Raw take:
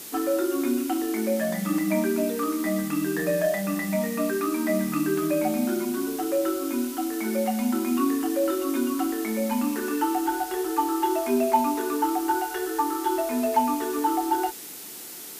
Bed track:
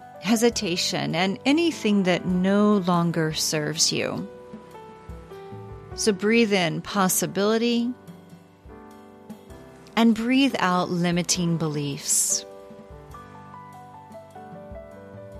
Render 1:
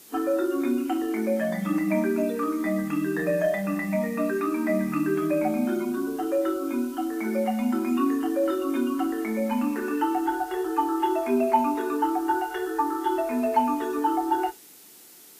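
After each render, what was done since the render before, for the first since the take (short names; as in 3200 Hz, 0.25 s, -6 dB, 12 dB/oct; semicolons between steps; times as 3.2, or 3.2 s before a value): noise print and reduce 10 dB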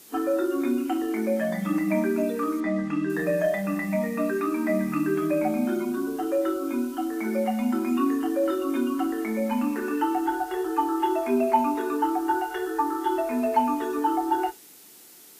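2.6–3.1 air absorption 92 m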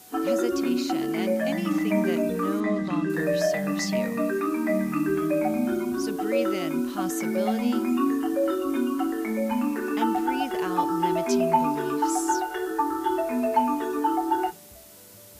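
add bed track -12.5 dB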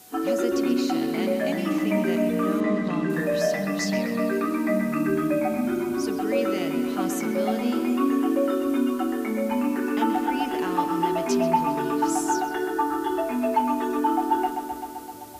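analogue delay 0.129 s, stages 4096, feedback 77%, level -9 dB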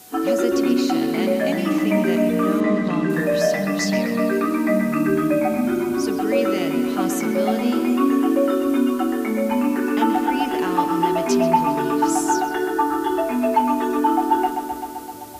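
gain +4.5 dB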